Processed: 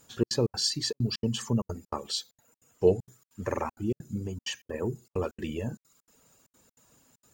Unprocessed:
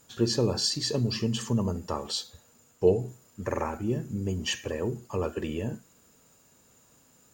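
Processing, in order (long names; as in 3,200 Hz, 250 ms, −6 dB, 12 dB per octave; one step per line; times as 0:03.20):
reverb reduction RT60 0.65 s
0:04.17–0:04.74: downward compressor, threshold −31 dBFS, peak gain reduction 6 dB
gate pattern "xxx.xx.xx" 195 BPM −60 dB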